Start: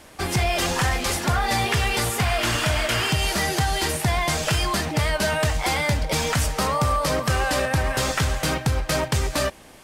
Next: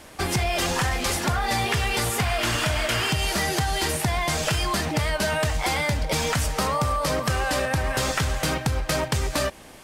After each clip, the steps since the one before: compression, threshold -22 dBFS, peak gain reduction 5 dB; trim +1.5 dB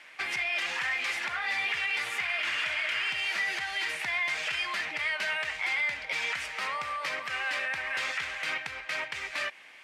band-pass filter 2.2 kHz, Q 2.9; peak limiter -26 dBFS, peak gain reduction 7.5 dB; trim +4.5 dB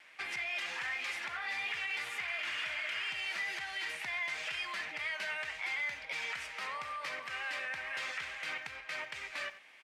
wow and flutter 25 cents; speakerphone echo 90 ms, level -13 dB; trim -7 dB

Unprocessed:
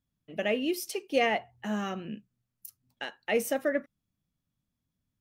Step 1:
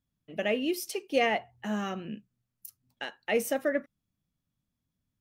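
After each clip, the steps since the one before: no audible change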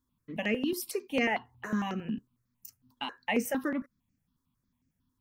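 graphic EQ with 31 bands 250 Hz +11 dB, 630 Hz -7 dB, 1 kHz +11 dB; in parallel at +2 dB: compression, threshold -34 dBFS, peak gain reduction 14 dB; on the sum: stepped phaser 11 Hz 670–3600 Hz; trim -2.5 dB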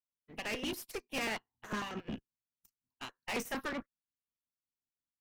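spectral peaks clipped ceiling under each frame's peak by 14 dB; valve stage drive 35 dB, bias 0.6; upward expansion 2.5:1, over -56 dBFS; trim +3.5 dB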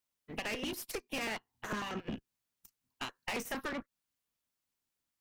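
compression, threshold -44 dBFS, peak gain reduction 10.5 dB; trim +8 dB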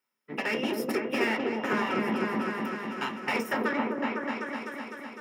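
delay with an opening low-pass 253 ms, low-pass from 750 Hz, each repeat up 1 oct, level 0 dB; reverberation RT60 0.35 s, pre-delay 3 ms, DRR 5.5 dB

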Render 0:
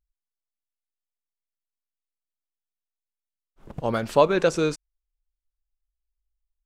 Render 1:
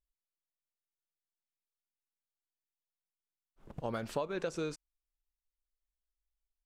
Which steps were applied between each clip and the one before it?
compression 6:1, threshold -23 dBFS, peak gain reduction 11.5 dB; trim -9 dB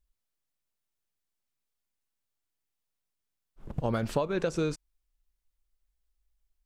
bass shelf 210 Hz +9 dB; trim +5 dB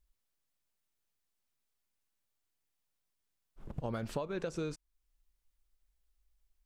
compression 1.5:1, threshold -51 dBFS, peak gain reduction 10 dB; trim +1 dB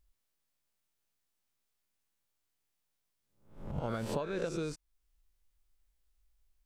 reverse spectral sustain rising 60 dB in 0.51 s

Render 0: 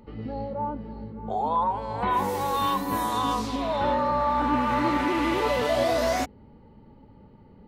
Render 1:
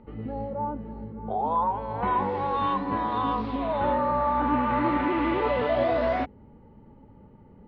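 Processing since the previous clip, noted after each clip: Bessel low-pass 2.2 kHz, order 8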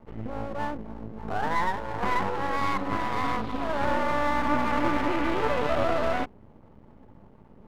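half-wave rectifier; trim +3 dB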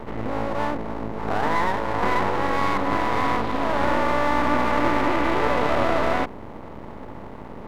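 spectral levelling over time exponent 0.6; pre-echo 84 ms -12 dB; trim +1 dB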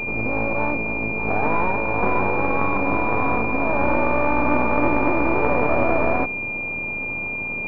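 in parallel at -9 dB: word length cut 6-bit, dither triangular; on the sum: class-D stage that switches slowly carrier 2.4 kHz

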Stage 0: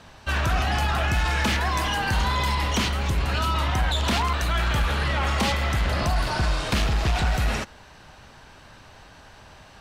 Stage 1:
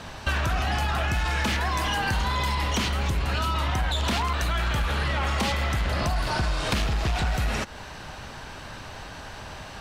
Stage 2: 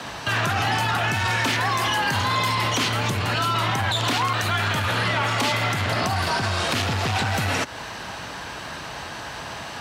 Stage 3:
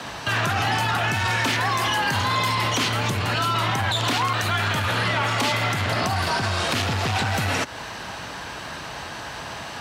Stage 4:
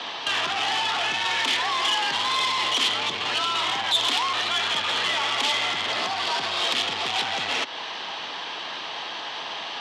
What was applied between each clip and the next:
compression 6:1, threshold -32 dBFS, peak gain reduction 12 dB; trim +8.5 dB
bass shelf 180 Hz -9.5 dB; peak limiter -21.5 dBFS, peak gain reduction 6 dB; frequency shift +42 Hz; trim +7 dB
no audible change
in parallel at -11 dB: integer overflow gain 19 dB; on the sum: cabinet simulation 420–5100 Hz, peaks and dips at 580 Hz -5 dB, 1.5 kHz -7 dB, 3.3 kHz +9 dB; transformer saturation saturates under 3.7 kHz

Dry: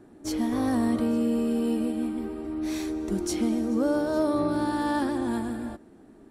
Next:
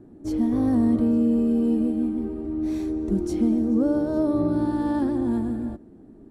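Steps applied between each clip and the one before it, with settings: tilt shelf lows +9 dB, about 650 Hz; trim -1.5 dB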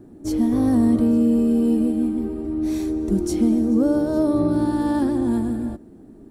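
treble shelf 4.6 kHz +10 dB; trim +3 dB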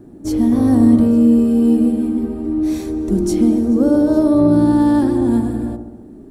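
feedback echo behind a low-pass 68 ms, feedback 64%, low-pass 890 Hz, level -6 dB; trim +3.5 dB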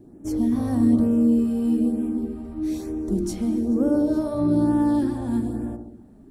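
LFO notch sine 1.1 Hz 310–4500 Hz; trim -7 dB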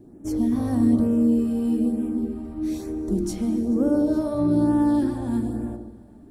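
plate-style reverb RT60 3.7 s, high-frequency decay 0.95×, DRR 17.5 dB

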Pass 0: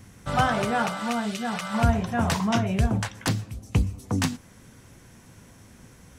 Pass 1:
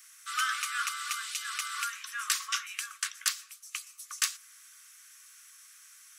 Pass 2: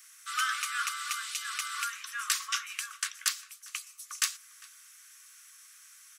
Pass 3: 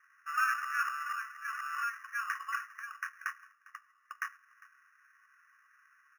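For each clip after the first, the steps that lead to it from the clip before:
Chebyshev high-pass 1.1 kHz, order 10; treble shelf 4.2 kHz +12 dB; trim -4 dB
echo from a far wall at 69 m, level -20 dB
brick-wall FIR low-pass 2 kHz; in parallel at -9 dB: sample-and-hold 11×

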